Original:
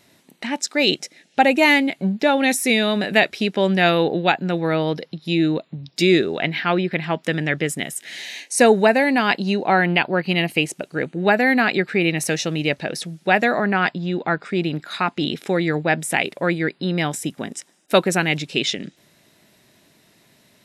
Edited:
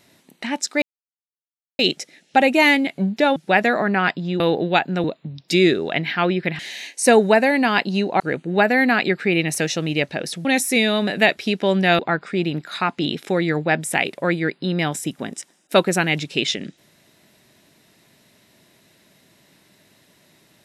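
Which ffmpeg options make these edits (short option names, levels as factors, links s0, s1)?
-filter_complex "[0:a]asplit=9[s0][s1][s2][s3][s4][s5][s6][s7][s8];[s0]atrim=end=0.82,asetpts=PTS-STARTPTS,afade=t=out:st=0.816:d=0.004:c=hsin,apad=pad_dur=0.97[s9];[s1]atrim=start=0.82:end=2.392,asetpts=PTS-STARTPTS,afade=t=in:d=0.004:c=hsin[s10];[s2]atrim=start=13.138:end=14.182[s11];[s3]atrim=start=3.928:end=4.572[s12];[s4]atrim=start=5.518:end=7.072[s13];[s5]atrim=start=8.118:end=9.732[s14];[s6]atrim=start=10.888:end=13.142[s15];[s7]atrim=start=2.388:end=3.932[s16];[s8]atrim=start=14.178[s17];[s9][s10]concat=n=2:v=0:a=1[s18];[s18][s11]acrossfade=d=0.004:c1=hsin:c2=hsin[s19];[s19][s12]acrossfade=d=0.004:c1=hsin:c2=hsin[s20];[s20][s13]acrossfade=d=0.004:c1=hsin:c2=hsin[s21];[s21][s14]acrossfade=d=0.004:c1=hsin:c2=hsin[s22];[s22][s15]acrossfade=d=0.004:c1=hsin:c2=hsin[s23];[s23][s16]acrossfade=d=0.004:c1=hsin:c2=hsin[s24];[s24][s17]acrossfade=d=0.004:c1=hsin:c2=hsin"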